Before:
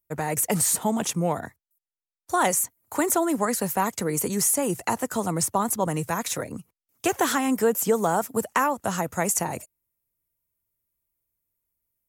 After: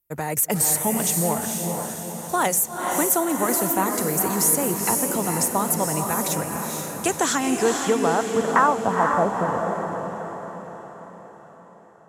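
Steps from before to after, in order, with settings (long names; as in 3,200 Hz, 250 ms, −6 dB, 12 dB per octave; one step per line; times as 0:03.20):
low-pass filter sweep 14,000 Hz → 520 Hz, 0:06.76–0:09.41
feedback delay with all-pass diffusion 473 ms, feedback 52%, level −3.5 dB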